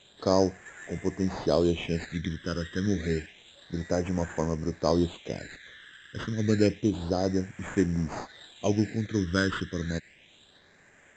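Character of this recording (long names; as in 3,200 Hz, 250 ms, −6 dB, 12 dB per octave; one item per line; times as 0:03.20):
aliases and images of a low sample rate 5,600 Hz, jitter 0%
phaser sweep stages 12, 0.29 Hz, lowest notch 730–3,900 Hz
mu-law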